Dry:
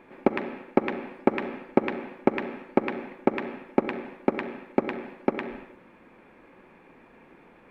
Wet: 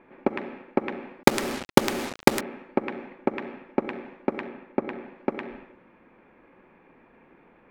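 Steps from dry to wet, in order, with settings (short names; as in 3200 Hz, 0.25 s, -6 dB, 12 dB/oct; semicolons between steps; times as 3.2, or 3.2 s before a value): 1.23–2.41 companded quantiser 2-bit; low-pass opened by the level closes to 2800 Hz, open at -21.5 dBFS; 4.48–5.16 high shelf 4100 Hz -7.5 dB; gain -2.5 dB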